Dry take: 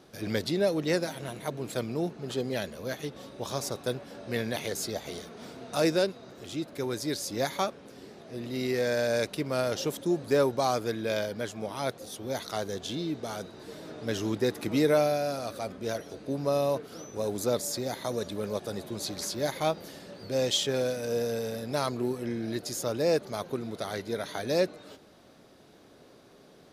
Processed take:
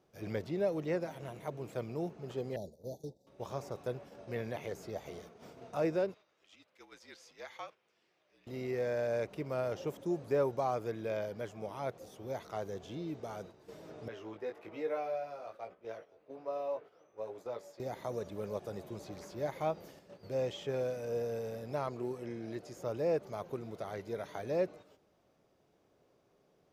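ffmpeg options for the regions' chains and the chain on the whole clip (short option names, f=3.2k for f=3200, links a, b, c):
-filter_complex "[0:a]asettb=1/sr,asplit=3[a][b][c];[a]atrim=end=2.564[d];[b]atrim=start=2.56:end=3.27,asetpts=PTS-STARTPTS,afade=t=in:d=0.004:c=qsin,afade=t=out:st=0.706:d=0.004:c=qsin,agate=range=-33dB:threshold=-38dB:ratio=3:release=100:detection=peak,asuperstop=centerf=1900:order=20:qfactor=0.68,equalizer=f=1.1k:t=o:w=0.74:g=-13.5[e];[c]atrim=start=3.266[f];[d][e]acrossfade=d=0.004:c1=hsin:c2=qsin[g];[g][f]acrossfade=d=0.004:c1=qsin:c2=hsin,asettb=1/sr,asplit=3[h][i][j];[h]atrim=end=6.144[k];[i]atrim=start=6.14:end=8.47,asetpts=PTS-STARTPTS,afade=t=in:d=0.004:c=qsin,afade=t=out:st=2.326:d=0.004:c=qsin,afreqshift=-52,bandpass=f=2.7k:t=q:w=0.9[l];[j]atrim=start=8.466[m];[k][l]acrossfade=d=0.004:c1=hsin:c2=qsin[n];[n][m]acrossfade=d=0.004:c1=qsin:c2=hsin,asettb=1/sr,asplit=3[o][p][q];[o]atrim=end=14.084[r];[p]atrim=start=14.08:end=17.8,asetpts=PTS-STARTPTS,afade=t=in:d=0.004:c=qsin,afade=t=out:st=3.716:d=0.004:c=qsin,acrossover=split=380 3500:gain=0.178 1 0.141[s][t][u];[s][t][u]amix=inputs=3:normalize=0,flanger=delay=17:depth=2.9:speed=1.2[v];[q]atrim=start=17.796[w];[r][v]acrossfade=d=0.004:c1=hsin:c2=qsin[x];[x][w]acrossfade=d=0.004:c1=qsin:c2=hsin,asettb=1/sr,asplit=3[y][z][aa];[y]atrim=end=21.884[ab];[z]atrim=start=21.88:end=22.77,asetpts=PTS-STARTPTS,afade=t=in:d=0.004:c=qsin,afade=t=out:st=0.886:d=0.004:c=qsin,lowpass=11k,lowshelf=f=86:g=-9[ac];[aa]atrim=start=22.766[ad];[ab][ac]acrossfade=d=0.004:c1=hsin:c2=qsin[ae];[ae][ad]acrossfade=d=0.004:c1=qsin:c2=hsin,agate=range=-8dB:threshold=-44dB:ratio=16:detection=peak,acrossover=split=2700[af][ag];[ag]acompressor=threshold=-46dB:ratio=4:attack=1:release=60[ah];[af][ah]amix=inputs=2:normalize=0,equalizer=f=250:t=o:w=0.67:g=-6,equalizer=f=1.6k:t=o:w=0.67:g=-5,equalizer=f=4k:t=o:w=0.67:g=-9,equalizer=f=10k:t=o:w=0.67:g=-9,volume=-5dB"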